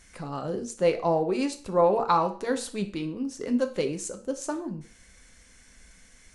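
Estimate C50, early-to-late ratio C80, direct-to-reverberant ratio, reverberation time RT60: 13.0 dB, 17.5 dB, 6.5 dB, 0.40 s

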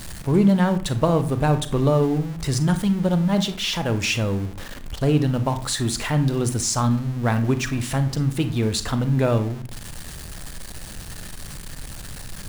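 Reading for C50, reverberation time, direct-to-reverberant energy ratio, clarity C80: 12.0 dB, 0.45 s, 9.5 dB, 17.0 dB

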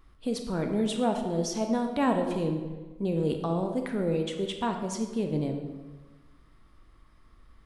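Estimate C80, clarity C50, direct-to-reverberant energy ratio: 8.0 dB, 6.0 dB, 4.0 dB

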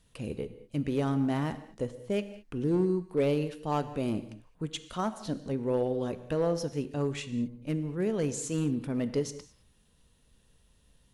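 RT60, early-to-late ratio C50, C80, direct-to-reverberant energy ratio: no single decay rate, 13.0 dB, 14.5 dB, 11.5 dB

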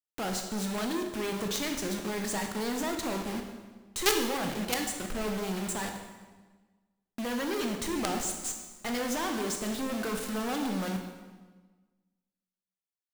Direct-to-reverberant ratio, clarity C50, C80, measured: 3.5 dB, 5.5 dB, 7.5 dB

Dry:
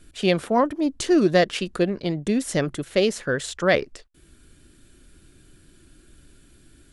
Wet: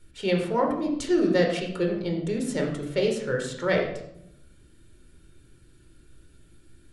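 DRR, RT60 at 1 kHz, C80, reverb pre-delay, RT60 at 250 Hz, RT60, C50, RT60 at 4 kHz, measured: 1.5 dB, 0.70 s, 8.0 dB, 16 ms, 1.2 s, 0.80 s, 5.5 dB, 0.50 s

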